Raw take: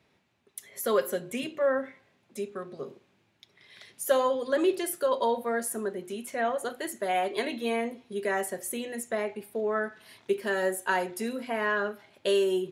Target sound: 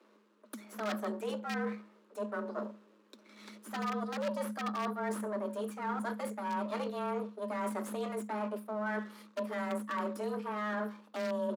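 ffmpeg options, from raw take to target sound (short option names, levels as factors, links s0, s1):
-filter_complex "[0:a]aeval=exprs='if(lt(val(0),0),0.251*val(0),val(0))':c=same,highshelf=f=1500:t=q:w=1.5:g=-8,asplit=2[s0][s1];[s1]aeval=exprs='(mod(9.44*val(0)+1,2)-1)/9.44':c=same,volume=0.422[s2];[s0][s2]amix=inputs=2:normalize=0,acrossover=split=6200[s3][s4];[s4]acompressor=threshold=0.00316:ratio=4:attack=1:release=60[s5];[s3][s5]amix=inputs=2:normalize=0,equalizer=f=540:t=o:w=0.36:g=-14.5,areverse,acompressor=threshold=0.0126:ratio=6,areverse,afreqshift=210,bandreject=f=65.06:t=h:w=4,bandreject=f=130.12:t=h:w=4,bandreject=f=195.18:t=h:w=4,atempo=1.1,volume=1.88" -ar 48000 -c:a ac3 -b:a 320k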